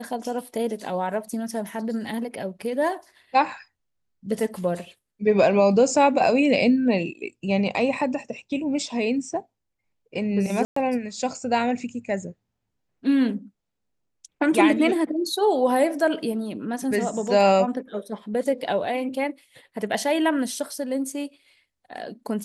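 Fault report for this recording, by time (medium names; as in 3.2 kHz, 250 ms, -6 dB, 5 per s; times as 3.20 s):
10.65–10.76 s: dropout 114 ms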